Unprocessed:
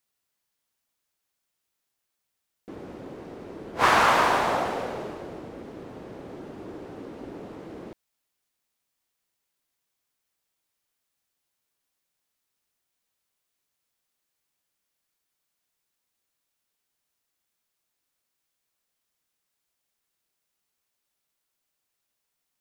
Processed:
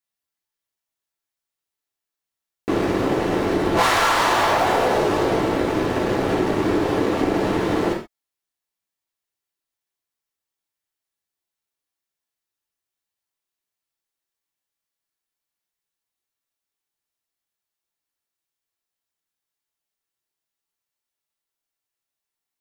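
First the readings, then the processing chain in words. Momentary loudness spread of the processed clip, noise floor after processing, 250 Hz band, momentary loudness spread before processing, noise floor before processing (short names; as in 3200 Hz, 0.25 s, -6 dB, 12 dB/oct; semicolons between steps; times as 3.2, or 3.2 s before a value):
5 LU, under -85 dBFS, +15.5 dB, 22 LU, -81 dBFS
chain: sample leveller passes 5; non-linear reverb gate 0.15 s falling, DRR -1.5 dB; compressor 10:1, threshold -15 dBFS, peak gain reduction 13 dB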